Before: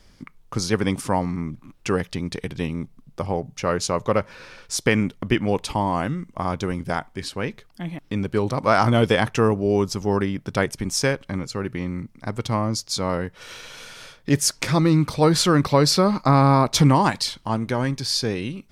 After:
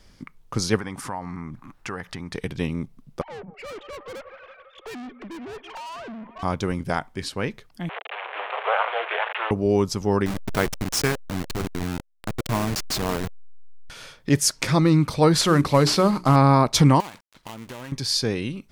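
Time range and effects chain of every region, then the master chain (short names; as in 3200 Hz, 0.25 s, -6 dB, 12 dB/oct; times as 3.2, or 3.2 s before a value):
0.78–2.35 band shelf 1200 Hz +8.5 dB + compressor 3:1, threshold -32 dBFS
3.21–6.43 sine-wave speech + thinning echo 0.166 s, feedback 81%, high-pass 440 Hz, level -22 dB + tube stage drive 35 dB, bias 0.45
7.89–9.51 delta modulation 16 kbps, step -17.5 dBFS + steep high-pass 560 Hz 72 dB/oct + ring modulator 110 Hz
10.26–13.9 level-crossing sampler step -22 dBFS + notch 540 Hz, Q 9.2
15.41–16.36 CVSD 64 kbps + notches 60/120/180/240/300/360/420 Hz
17–17.92 switching dead time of 0.25 ms + low shelf 410 Hz -10 dB + compressor, threshold -33 dBFS
whole clip: dry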